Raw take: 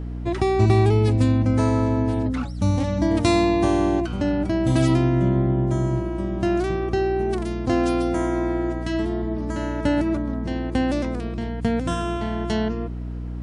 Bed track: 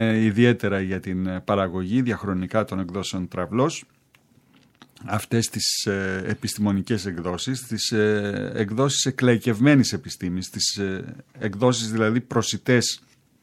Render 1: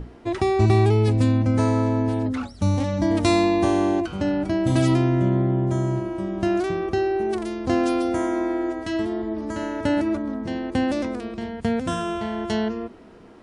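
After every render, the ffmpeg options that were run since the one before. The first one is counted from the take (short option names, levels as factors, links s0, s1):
-af "bandreject=f=60:t=h:w=6,bandreject=f=120:t=h:w=6,bandreject=f=180:t=h:w=6,bandreject=f=240:t=h:w=6,bandreject=f=300:t=h:w=6"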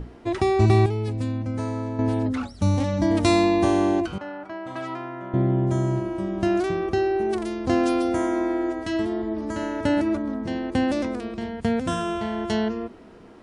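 -filter_complex "[0:a]asettb=1/sr,asplit=3[s0][s1][s2];[s0]atrim=end=4.184[s3];[s1]atrim=start=4.18:end=5.34,asetpts=PTS-STARTPTS,afade=t=in:d=0.004:c=qsin,afade=t=out:st=1.156:d=0.004:c=qsin,bandpass=f=1200:t=q:w=1.6[s4];[s2]atrim=start=5.336[s5];[s3][s4]acrossfade=d=0.004:c1=hsin:c2=qsin[s6];[s6][s5]acrossfade=d=0.004:c1=qsin:c2=hsin,asplit=3[s7][s8][s9];[s7]atrim=end=0.862[s10];[s8]atrim=start=0.858:end=1.992,asetpts=PTS-STARTPTS,volume=0.398[s11];[s9]atrim=start=1.988[s12];[s10][s11]acrossfade=d=0.004:c1=hsin:c2=hsin[s13];[s13][s12]acrossfade=d=0.004:c1=hsin:c2=hsin"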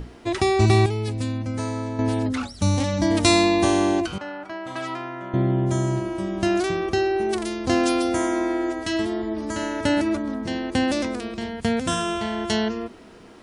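-af "highshelf=f=2200:g=10"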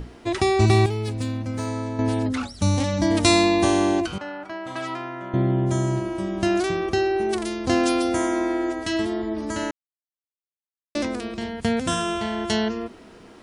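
-filter_complex "[0:a]asettb=1/sr,asplit=3[s0][s1][s2];[s0]atrim=end=0.674[s3];[s1]atrim=start=0.67:end=1.67,asetpts=PTS-STARTPTS,afade=t=in:d=0.004:c=qsin,afade=t=out:st=0.996:d=0.004:c=qsin,aeval=exprs='sgn(val(0))*max(abs(val(0))-0.00473,0)':c=same[s4];[s2]atrim=start=1.666[s5];[s3][s4]acrossfade=d=0.004:c1=hsin:c2=qsin[s6];[s6][s5]acrossfade=d=0.004:c1=qsin:c2=hsin,asplit=3[s7][s8][s9];[s7]atrim=end=9.71,asetpts=PTS-STARTPTS,afade=t=out:st=9.706:d=0.004:c=hsin[s10];[s8]atrim=start=9.71:end=10.95,asetpts=PTS-STARTPTS,volume=0[s11];[s9]atrim=start=10.95,asetpts=PTS-STARTPTS,afade=t=in:d=0.004:c=hsin[s12];[s10][s11][s12]concat=n=3:v=0:a=1"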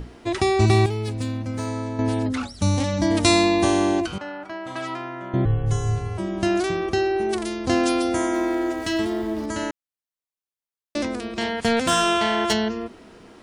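-filter_complex "[0:a]asettb=1/sr,asplit=3[s0][s1][s2];[s0]atrim=end=5.454[s3];[s1]atrim=start=5.45:end=6.18,asetpts=PTS-STARTPTS,afade=t=in:d=0.004:c=qsin,afade=t=out:st=0.726:d=0.004:c=qsin,afreqshift=-240[s4];[s2]atrim=start=6.176[s5];[s3][s4]acrossfade=d=0.004:c1=hsin:c2=qsin[s6];[s6][s5]acrossfade=d=0.004:c1=qsin:c2=hsin,asettb=1/sr,asplit=3[s7][s8][s9];[s7]atrim=end=8.344[s10];[s8]atrim=start=8.34:end=9.46,asetpts=PTS-STARTPTS,afade=t=in:d=0.004:c=qsin,afade=t=out:st=1.116:d=0.004:c=qsin,aeval=exprs='val(0)+0.5*0.0133*sgn(val(0))':c=same[s11];[s9]atrim=start=9.456[s12];[s10][s11]acrossfade=d=0.004:c1=hsin:c2=qsin[s13];[s13][s12]acrossfade=d=0.004:c1=qsin:c2=hsin,asplit=3[s14][s15][s16];[s14]afade=t=out:st=11.36:d=0.02[s17];[s15]asplit=2[s18][s19];[s19]highpass=f=720:p=1,volume=6.31,asoftclip=type=tanh:threshold=0.355[s20];[s18][s20]amix=inputs=2:normalize=0,lowpass=f=5700:p=1,volume=0.501,afade=t=in:st=11.36:d=0.02,afade=t=out:st=12.52:d=0.02[s21];[s16]afade=t=in:st=12.52:d=0.02[s22];[s17][s21][s22]amix=inputs=3:normalize=0"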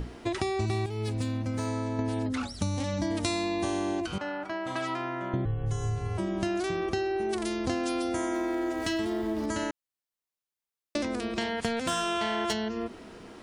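-af "acompressor=threshold=0.0447:ratio=6"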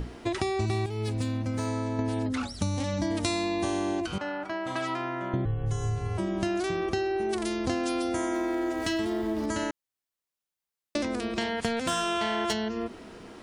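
-af "volume=1.12"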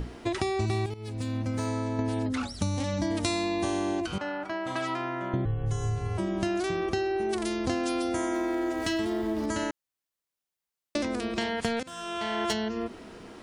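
-filter_complex "[0:a]asplit=3[s0][s1][s2];[s0]atrim=end=0.94,asetpts=PTS-STARTPTS,afade=t=out:st=0.936:d=0.004:c=hsin:silence=0.211349[s3];[s1]atrim=start=0.94:end=11.83,asetpts=PTS-STARTPTS,afade=t=in:d=0.45:silence=0.211349,afade=t=out:st=10.886:d=0.004:c=hsin:silence=0.0749894[s4];[s2]atrim=start=11.83,asetpts=PTS-STARTPTS,afade=t=in:d=0.62:silence=0.0749894[s5];[s3][s4][s5]concat=n=3:v=0:a=1"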